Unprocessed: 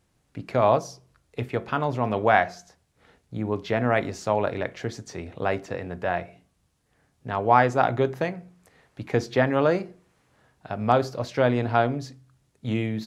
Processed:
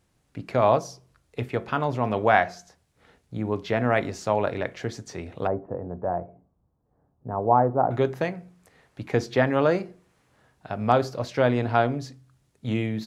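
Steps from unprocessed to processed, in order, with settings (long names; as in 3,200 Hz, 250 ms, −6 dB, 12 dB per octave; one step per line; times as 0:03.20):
0:05.47–0:07.91: low-pass filter 1,000 Hz 24 dB per octave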